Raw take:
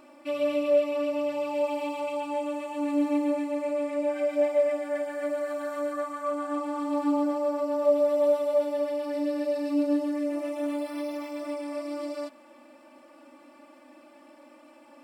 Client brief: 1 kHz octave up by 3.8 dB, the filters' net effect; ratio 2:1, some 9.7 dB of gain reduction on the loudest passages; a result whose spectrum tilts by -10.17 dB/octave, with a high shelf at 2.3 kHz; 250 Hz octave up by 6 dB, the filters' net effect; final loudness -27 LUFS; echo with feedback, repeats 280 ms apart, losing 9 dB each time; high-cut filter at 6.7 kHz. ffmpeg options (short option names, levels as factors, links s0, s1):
-af "lowpass=6700,equalizer=f=250:t=o:g=7,equalizer=f=1000:t=o:g=5,highshelf=f=2300:g=-5,acompressor=threshold=0.02:ratio=2,aecho=1:1:280|560|840|1120:0.355|0.124|0.0435|0.0152,volume=1.68"